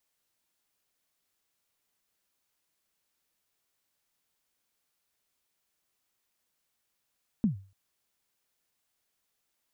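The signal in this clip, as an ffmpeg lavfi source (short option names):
-f lavfi -i "aevalsrc='0.119*pow(10,-3*t/0.37)*sin(2*PI*(240*0.12/log(97/240)*(exp(log(97/240)*min(t,0.12)/0.12)-1)+97*max(t-0.12,0)))':d=0.29:s=44100"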